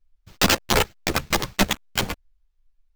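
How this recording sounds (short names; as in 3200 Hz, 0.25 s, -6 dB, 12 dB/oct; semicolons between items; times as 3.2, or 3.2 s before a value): aliases and images of a low sample rate 10000 Hz, jitter 0%; a shimmering, thickened sound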